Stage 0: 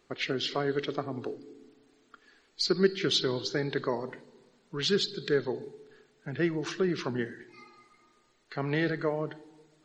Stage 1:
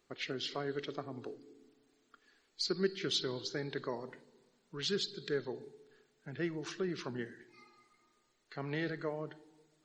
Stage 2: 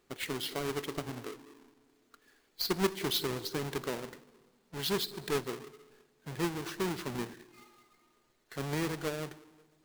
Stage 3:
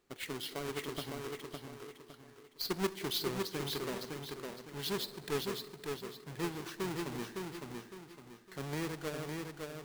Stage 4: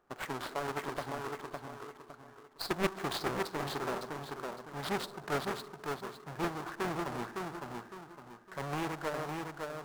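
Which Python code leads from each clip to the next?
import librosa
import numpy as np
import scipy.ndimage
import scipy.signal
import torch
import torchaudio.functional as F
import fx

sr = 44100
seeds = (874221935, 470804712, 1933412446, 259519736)

y1 = fx.high_shelf(x, sr, hz=5700.0, db=6.0)
y1 = y1 * 10.0 ** (-8.5 / 20.0)
y2 = fx.halfwave_hold(y1, sr)
y2 = y2 * 10.0 ** (-1.0 / 20.0)
y3 = fx.echo_feedback(y2, sr, ms=559, feedback_pct=35, wet_db=-4)
y3 = y3 * 10.0 ** (-4.5 / 20.0)
y4 = scipy.signal.medfilt(y3, 15)
y4 = fx.band_shelf(y4, sr, hz=970.0, db=8.5, octaves=1.7)
y4 = fx.doppler_dist(y4, sr, depth_ms=0.84)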